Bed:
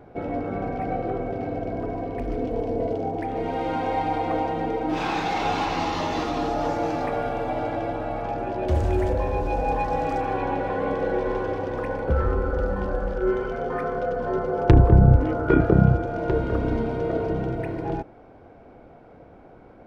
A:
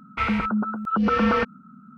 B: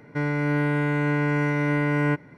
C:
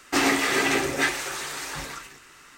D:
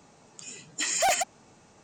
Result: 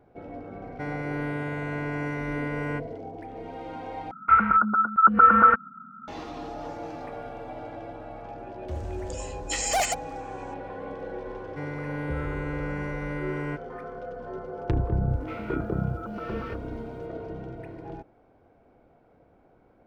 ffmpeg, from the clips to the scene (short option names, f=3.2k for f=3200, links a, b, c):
-filter_complex "[2:a]asplit=2[a][b];[1:a]asplit=2[c][d];[0:a]volume=-11.5dB[e];[a]bandreject=f=50:t=h:w=6,bandreject=f=100:t=h:w=6,bandreject=f=150:t=h:w=6,bandreject=f=200:t=h:w=6,bandreject=f=250:t=h:w=6,bandreject=f=300:t=h:w=6,bandreject=f=350:t=h:w=6[f];[c]lowpass=f=1.4k:t=q:w=7.3[g];[d]acrusher=bits=8:mix=0:aa=0.000001[h];[e]asplit=2[i][j];[i]atrim=end=4.114[k];[g]atrim=end=1.97,asetpts=PTS-STARTPTS,volume=-6dB[l];[j]atrim=start=6.076[m];[f]atrim=end=2.37,asetpts=PTS-STARTPTS,volume=-7dB,afade=t=in:d=0.004:c=hsin,afade=t=out:st=2.366:d=0.004:c=hsin,adelay=640[n];[4:a]atrim=end=1.83,asetpts=PTS-STARTPTS,volume=-1dB,afade=t=in:d=0.004:c=hsin,afade=t=out:st=1.826:d=0.004:c=hsin,adelay=8710[o];[b]atrim=end=2.37,asetpts=PTS-STARTPTS,volume=-10dB,afade=t=in:d=0.004:c=hsin,afade=t=out:st=2.366:d=0.004:c=hsin,adelay=11410[p];[h]atrim=end=1.97,asetpts=PTS-STARTPTS,volume=-17dB,afade=t=in:d=0.004:c=hsin,afade=t=out:st=1.966:d=0.004:c=hsin,adelay=15100[q];[k][l]acrossfade=d=0.004:c1=hsin:c2=hsin[r];[r][m]acrossfade=d=0.004:c1=hsin:c2=hsin[s];[s][n][o][p][q]amix=inputs=5:normalize=0"